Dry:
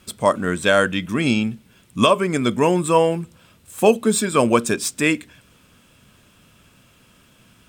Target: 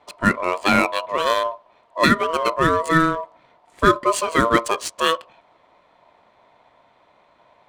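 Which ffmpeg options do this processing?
-af "acrusher=bits=7:mode=log:mix=0:aa=0.000001,adynamicsmooth=sensitivity=4:basefreq=2100,aeval=exprs='val(0)*sin(2*PI*810*n/s)':c=same,volume=1.26"

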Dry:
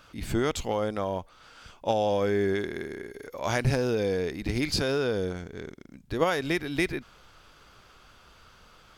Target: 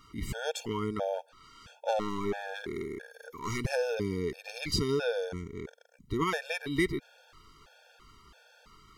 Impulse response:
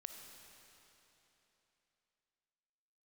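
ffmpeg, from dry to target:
-filter_complex "[0:a]asettb=1/sr,asplit=3[s0][s1][s2];[s0]atrim=end=1.144[s3];[s1]atrim=start=1.14:end=3.64,asetpts=PTS-STARTPTS,afade=t=in:d=0.004:c=qsin,afade=t=out:st=2.496:d=0.004:c=qsin,aeval=exprs='clip(val(0),-1,0.0398)':c=same[s4];[s2]atrim=start=3.636[s5];[s3][s4]acrossfade=d=0.004:c1=hsin:c2=qsin[s6];[s6][s5]acrossfade=d=0.004:c1=qsin:c2=hsin,afftfilt=real='re*gt(sin(2*PI*1.5*pts/sr)*(1-2*mod(floor(b*sr/1024/460),2)),0)':imag='im*gt(sin(2*PI*1.5*pts/sr)*(1-2*mod(floor(b*sr/1024/460),2)),0)':win_size=1024:overlap=0.75"

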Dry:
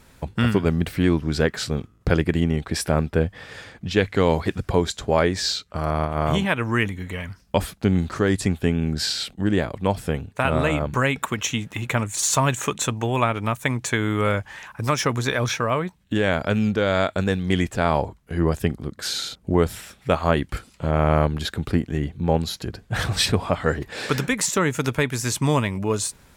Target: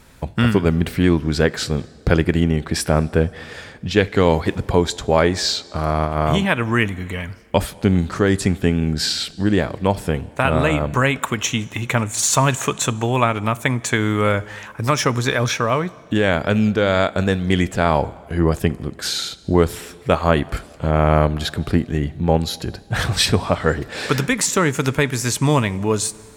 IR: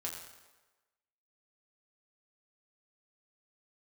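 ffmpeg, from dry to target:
-filter_complex "[0:a]asplit=2[s0][s1];[1:a]atrim=start_sample=2205,asetrate=22491,aresample=44100[s2];[s1][s2]afir=irnorm=-1:irlink=0,volume=0.0841[s3];[s0][s3]amix=inputs=2:normalize=0,volume=1.41"

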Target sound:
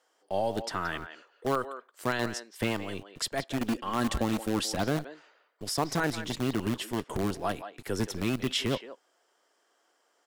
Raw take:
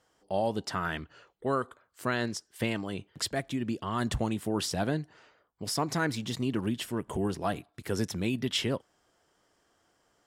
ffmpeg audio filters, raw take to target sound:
-filter_complex "[0:a]asettb=1/sr,asplit=3[s0][s1][s2];[s0]atrim=end=3.604[s3];[s1]atrim=start=3.6:end=4.77,asetpts=PTS-STARTPTS,afade=t=in:d=0.004:c=qsin,afade=t=out:st=1.166:d=0.004:c=qsin,aecho=1:1:3.7:0.53,atrim=end_sample=51597[s4];[s2]atrim=start=4.766[s5];[s3][s4]acrossfade=d=0.004:c1=hsin:c2=qsin[s6];[s6][s5]acrossfade=d=0.004:c1=qsin:c2=hsin,acrossover=split=310|5700[s7][s8][s9];[s7]acrusher=bits=6:dc=4:mix=0:aa=0.000001[s10];[s8]aecho=1:1:175:0.299[s11];[s10][s11][s9]amix=inputs=3:normalize=0"

